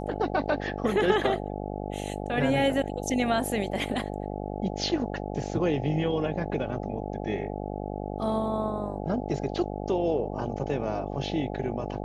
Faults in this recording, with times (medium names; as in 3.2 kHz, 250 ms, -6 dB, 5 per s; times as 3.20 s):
buzz 50 Hz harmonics 17 -34 dBFS